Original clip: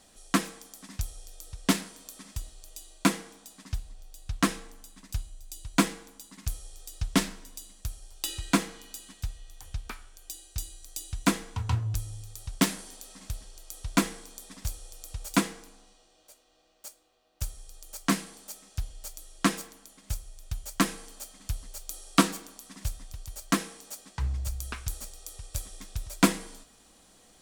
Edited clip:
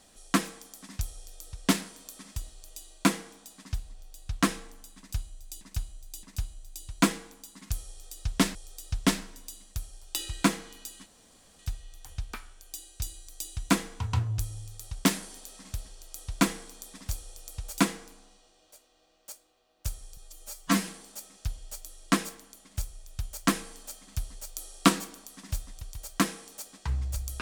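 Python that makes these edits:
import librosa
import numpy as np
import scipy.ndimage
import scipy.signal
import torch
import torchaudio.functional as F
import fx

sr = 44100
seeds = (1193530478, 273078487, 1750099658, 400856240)

y = fx.edit(x, sr, fx.repeat(start_s=4.99, length_s=0.62, count=3),
    fx.repeat(start_s=6.64, length_s=0.67, count=2),
    fx.insert_room_tone(at_s=9.15, length_s=0.53),
    fx.stretch_span(start_s=17.73, length_s=0.47, factor=1.5), tone=tone)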